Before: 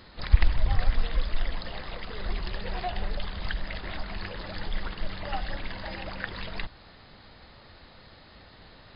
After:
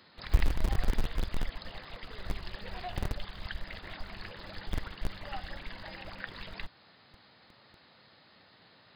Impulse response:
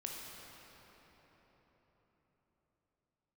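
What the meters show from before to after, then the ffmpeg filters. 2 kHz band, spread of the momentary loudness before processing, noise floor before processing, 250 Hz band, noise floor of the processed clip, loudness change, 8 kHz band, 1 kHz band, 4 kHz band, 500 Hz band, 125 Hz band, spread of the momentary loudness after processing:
-5.5 dB, 23 LU, -52 dBFS, -2.5 dB, -61 dBFS, -5.5 dB, no reading, -6.5 dB, -5.5 dB, -5.5 dB, -5.0 dB, 25 LU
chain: -filter_complex "[0:a]equalizer=f=360:t=o:w=2.8:g=-3.5,acrossover=split=110|590[s0][s1][s2];[s0]acrusher=bits=5:dc=4:mix=0:aa=0.000001[s3];[s3][s1][s2]amix=inputs=3:normalize=0,volume=0.531"

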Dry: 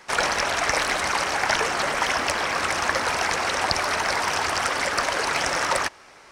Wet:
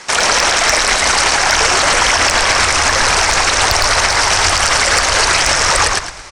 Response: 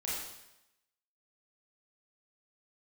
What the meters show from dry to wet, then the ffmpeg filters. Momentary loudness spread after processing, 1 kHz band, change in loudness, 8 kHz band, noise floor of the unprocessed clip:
1 LU, +9.5 dB, +12.0 dB, +16.5 dB, -49 dBFS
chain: -filter_complex "[0:a]lowpass=f=8600:w=0.5412,lowpass=f=8600:w=1.3066,asplit=2[s0][s1];[s1]asplit=4[s2][s3][s4][s5];[s2]adelay=110,afreqshift=-71,volume=0.562[s6];[s3]adelay=220,afreqshift=-142,volume=0.174[s7];[s4]adelay=330,afreqshift=-213,volume=0.0543[s8];[s5]adelay=440,afreqshift=-284,volume=0.0168[s9];[s6][s7][s8][s9]amix=inputs=4:normalize=0[s10];[s0][s10]amix=inputs=2:normalize=0,crystalizer=i=2.5:c=0,asoftclip=type=hard:threshold=0.501,asubboost=boost=6.5:cutoff=87,alimiter=level_in=3.98:limit=0.891:release=50:level=0:latency=1,volume=0.891"

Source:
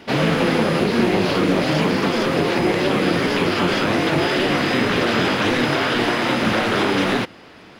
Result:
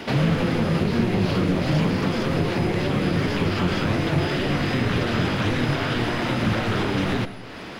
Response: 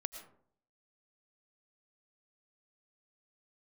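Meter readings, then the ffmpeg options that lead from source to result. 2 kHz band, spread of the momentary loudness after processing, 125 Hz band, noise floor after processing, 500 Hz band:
-7.0 dB, 2 LU, +3.0 dB, -36 dBFS, -6.5 dB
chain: -filter_complex "[0:a]acrossover=split=140[s0][s1];[s1]acompressor=threshold=0.01:ratio=2.5[s2];[s0][s2]amix=inputs=2:normalize=0,asplit=2[s3][s4];[1:a]atrim=start_sample=2205[s5];[s4][s5]afir=irnorm=-1:irlink=0,volume=1.88[s6];[s3][s6]amix=inputs=2:normalize=0"

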